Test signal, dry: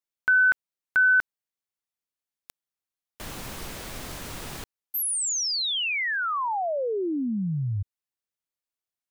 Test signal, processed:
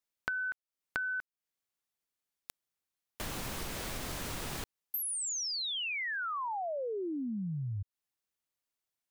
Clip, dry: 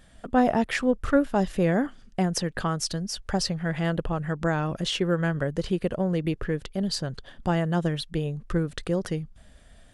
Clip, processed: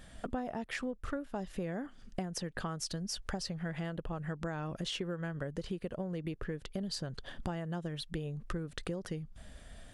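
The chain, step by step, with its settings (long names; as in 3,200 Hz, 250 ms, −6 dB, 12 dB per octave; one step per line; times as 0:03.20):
downward compressor 10 to 1, threshold −36 dBFS
level +1.5 dB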